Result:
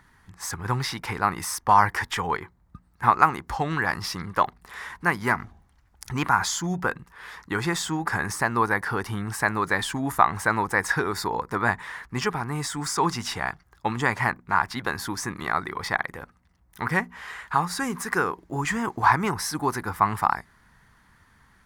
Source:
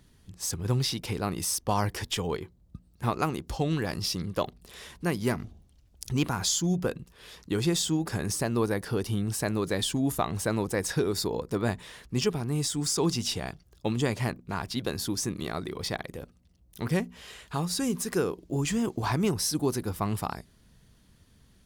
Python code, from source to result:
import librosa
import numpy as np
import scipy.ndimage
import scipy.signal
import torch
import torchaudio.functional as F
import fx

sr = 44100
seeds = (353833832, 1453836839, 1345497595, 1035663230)

y = fx.band_shelf(x, sr, hz=1300.0, db=15.5, octaves=1.7)
y = y * 10.0 ** (-1.5 / 20.0)